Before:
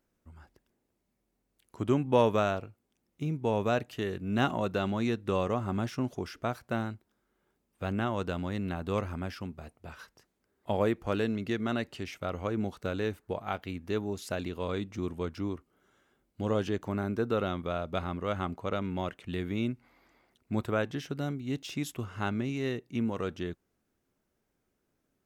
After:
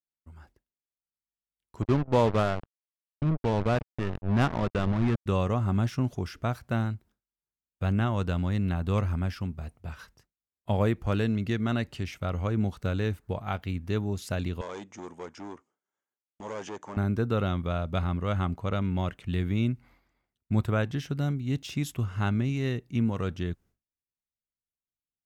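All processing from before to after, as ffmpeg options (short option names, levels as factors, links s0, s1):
-filter_complex "[0:a]asettb=1/sr,asplit=3[s0][s1][s2];[s0]atrim=end=1.824[s3];[s1]atrim=start=1.82:end=5.26,asetpts=PTS-STARTPTS,afade=t=in:d=0.004:c=qsin,afade=t=out:st=3.436:d=0.004:c=qsin,acrusher=bits=4:mix=0:aa=0.5,adynamicsmooth=sensitivity=2:basefreq=1100[s4];[s2]atrim=start=5.256[s5];[s3][s4]acrossfade=d=0.004:c1=hsin:c2=qsin[s6];[s6][s5]acrossfade=d=0.004:c1=qsin:c2=hsin,asettb=1/sr,asplit=3[s7][s8][s9];[s7]atrim=end=14.614[s10];[s8]atrim=start=14.61:end=16.97,asetpts=PTS-STARTPTS,afade=t=in:d=0.004:c=qsin,afade=t=out:st=2.356:d=0.004:c=qsin,volume=33.5,asoftclip=hard,volume=0.0299,highpass=400,equalizer=f=900:t=q:w=4:g=5,equalizer=f=1400:t=q:w=4:g=-3,equalizer=f=2700:t=q:w=4:g=-5,equalizer=f=4100:t=q:w=4:g=-9,equalizer=f=6700:t=q:w=4:g=7,lowpass=f=8100:w=0.5412,lowpass=f=8100:w=1.3066[s11];[s9]atrim=start=16.966[s12];[s10][s11]acrossfade=d=0.004:c1=hsin:c2=qsin[s13];[s13][s12]acrossfade=d=0.004:c1=qsin:c2=hsin,agate=range=0.0224:threshold=0.00158:ratio=3:detection=peak,asubboost=boost=3:cutoff=180,volume=1.19"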